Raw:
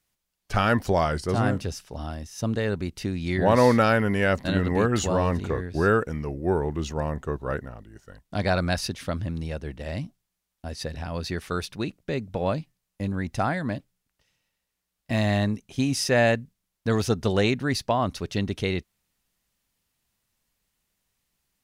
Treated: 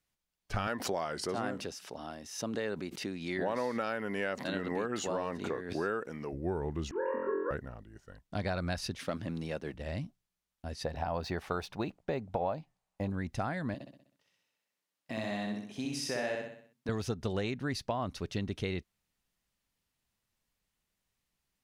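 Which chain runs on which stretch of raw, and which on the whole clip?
0:00.67–0:06.33: high-pass filter 250 Hz + background raised ahead of every attack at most 80 dB per second
0:06.91–0:07.51: three sine waves on the formant tracks + Butterworth band-reject 770 Hz, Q 2.8 + flutter between parallel walls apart 3.9 metres, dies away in 1.1 s
0:08.99–0:09.74: high-pass filter 190 Hz + leveller curve on the samples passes 1
0:10.85–0:13.10: parametric band 780 Hz +13.5 dB 1.1 octaves + linearly interpolated sample-rate reduction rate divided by 2×
0:13.74–0:16.89: high-pass filter 200 Hz + downward compressor 2 to 1, threshold −31 dBFS + repeating echo 63 ms, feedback 49%, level −3 dB
whole clip: high-shelf EQ 7,400 Hz −5.5 dB; downward compressor 6 to 1, threshold −24 dBFS; level −5.5 dB

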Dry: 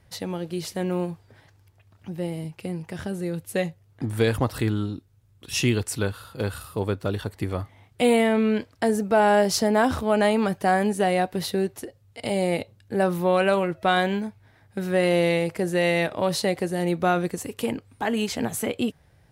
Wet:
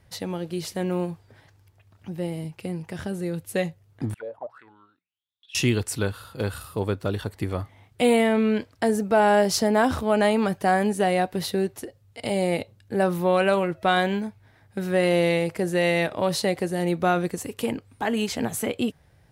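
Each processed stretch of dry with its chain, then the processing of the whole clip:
0:04.14–0:05.55: mains-hum notches 60/120/180 Hz + envelope filter 560–3,800 Hz, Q 12, down, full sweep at −17.5 dBFS
whole clip: no processing

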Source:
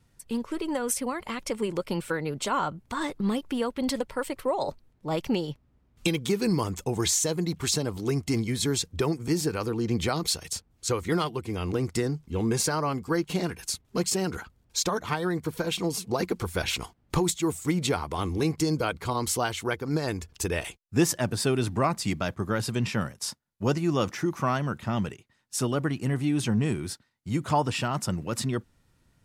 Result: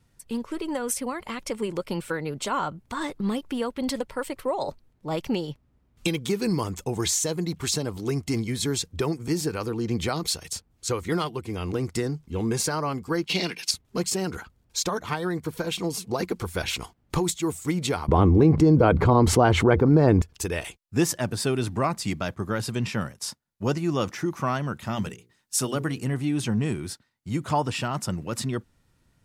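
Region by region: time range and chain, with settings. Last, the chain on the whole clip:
0:13.26–0:13.71: high-pass filter 160 Hz 24 dB per octave + flat-topped bell 3,400 Hz +12 dB
0:18.08–0:20.22: low-pass filter 2,300 Hz 6 dB per octave + tilt shelving filter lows +8 dB, about 1,400 Hz + envelope flattener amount 70%
0:24.79–0:26.04: high-shelf EQ 4,400 Hz +8 dB + mains-hum notches 60/120/180/240/300/360/420/480 Hz
whole clip: no processing

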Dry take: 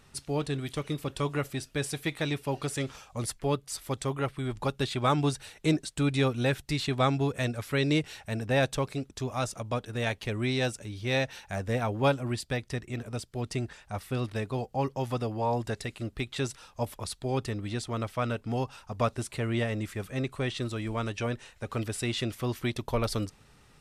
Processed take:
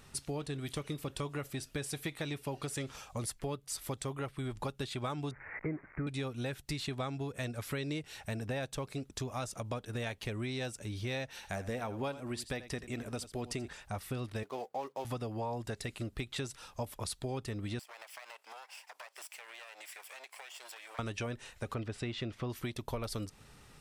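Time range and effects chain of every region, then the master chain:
0:05.31–0:06.07: spike at every zero crossing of −20.5 dBFS + Butterworth low-pass 2,200 Hz 96 dB per octave
0:11.29–0:13.68: parametric band 120 Hz −6.5 dB 0.54 octaves + single-tap delay 84 ms −16 dB
0:14.43–0:15.05: running median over 15 samples + high-pass filter 440 Hz
0:17.79–0:20.99: lower of the sound and its delayed copy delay 0.38 ms + high-pass filter 720 Hz 24 dB per octave + downward compressor 12 to 1, threshold −46 dBFS
0:21.74–0:22.50: low-pass filter 5,400 Hz + high-shelf EQ 3,800 Hz −8 dB
whole clip: high-shelf EQ 9,800 Hz +5 dB; downward compressor 6 to 1, threshold −36 dBFS; level +1 dB

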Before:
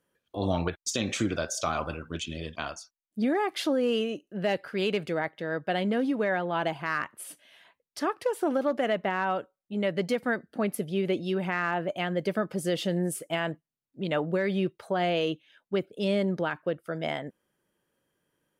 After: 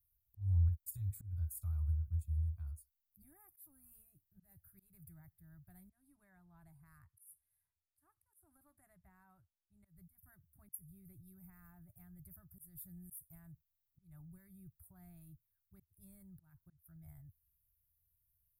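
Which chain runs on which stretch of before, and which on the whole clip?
0:05.90–0:09.85: low-pass filter 8,500 Hz + low-shelf EQ 240 Hz −6 dB
whole clip: inverse Chebyshev band-stop filter 210–6,400 Hz, stop band 50 dB; parametric band 490 Hz −13.5 dB 0.24 octaves; volume swells 221 ms; level +11 dB

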